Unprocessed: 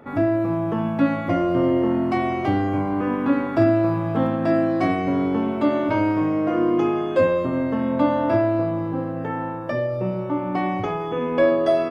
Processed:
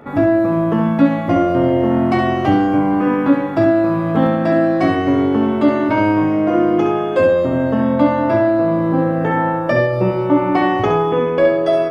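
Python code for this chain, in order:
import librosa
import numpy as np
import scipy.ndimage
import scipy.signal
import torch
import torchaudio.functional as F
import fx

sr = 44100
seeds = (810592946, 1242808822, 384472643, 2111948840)

y = fx.room_early_taps(x, sr, ms=(14, 67), db=(-9.5, -6.5))
y = fx.rider(y, sr, range_db=4, speed_s=0.5)
y = y * librosa.db_to_amplitude(5.5)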